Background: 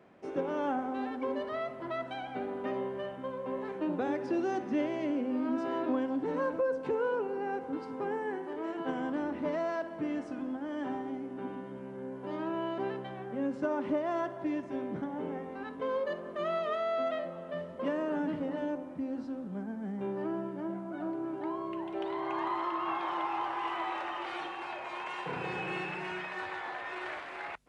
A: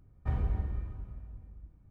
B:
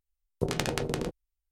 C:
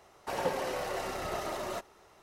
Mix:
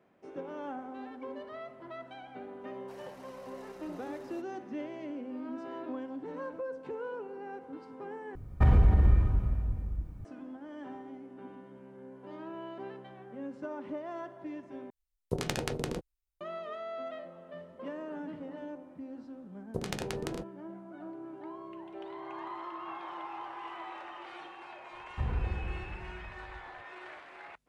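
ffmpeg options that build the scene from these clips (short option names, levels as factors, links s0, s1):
-filter_complex "[1:a]asplit=2[s0][s1];[2:a]asplit=2[s2][s3];[0:a]volume=0.398[s4];[s0]alimiter=level_in=23.7:limit=0.891:release=50:level=0:latency=1[s5];[s1]agate=range=0.0224:threshold=0.002:ratio=3:release=100:detection=peak[s6];[s4]asplit=3[s7][s8][s9];[s7]atrim=end=8.354[s10];[s5]atrim=end=1.9,asetpts=PTS-STARTPTS,volume=0.224[s11];[s8]atrim=start=10.246:end=14.904[s12];[s2]atrim=end=1.51,asetpts=PTS-STARTPTS,volume=0.668[s13];[s9]atrim=start=16.406[s14];[3:a]atrim=end=2.22,asetpts=PTS-STARTPTS,volume=0.126,afade=t=in:d=0.004:c=hsin,afade=t=out:st=2.216:d=0.004:c=hsin,adelay=2610[s15];[s3]atrim=end=1.51,asetpts=PTS-STARTPTS,volume=0.447,afade=t=in:d=0.004:c=hsin,afade=t=out:st=1.506:d=0.004:c=hsin,adelay=19330[s16];[s6]atrim=end=1.9,asetpts=PTS-STARTPTS,volume=0.794,afade=t=in:d=0.004:c=hsin,afade=t=out:st=1.896:d=0.004:c=hsin,adelay=24920[s17];[s10][s11]acrossfade=d=0.004:c1=hsin:c2=hsin[s18];[s18][s12]acrossfade=d=0.004:c1=hsin:c2=hsin[s19];[s19][s13]acrossfade=d=0.004:c1=hsin:c2=hsin[s20];[s20][s14]acrossfade=d=0.004:c1=hsin:c2=hsin[s21];[s21][s15][s16][s17]amix=inputs=4:normalize=0"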